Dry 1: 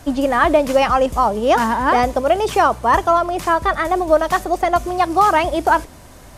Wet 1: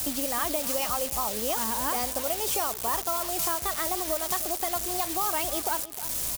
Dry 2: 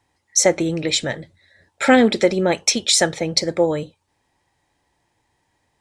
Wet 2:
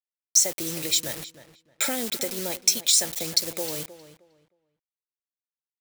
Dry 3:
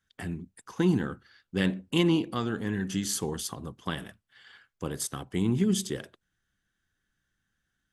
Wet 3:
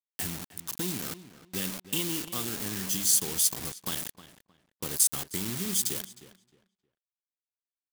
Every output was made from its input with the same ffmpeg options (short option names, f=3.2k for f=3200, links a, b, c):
-filter_complex "[0:a]equalizer=f=1.7k:t=o:w=0.89:g=-5.5,acompressor=threshold=-34dB:ratio=3,acrusher=bits=6:mix=0:aa=0.000001,crystalizer=i=5.5:c=0,asplit=2[a][b];[b]adelay=311,lowpass=f=3k:p=1,volume=-14dB,asplit=2[c][d];[d]adelay=311,lowpass=f=3k:p=1,volume=0.23,asplit=2[e][f];[f]adelay=311,lowpass=f=3k:p=1,volume=0.23[g];[a][c][e][g]amix=inputs=4:normalize=0,volume=-2dB"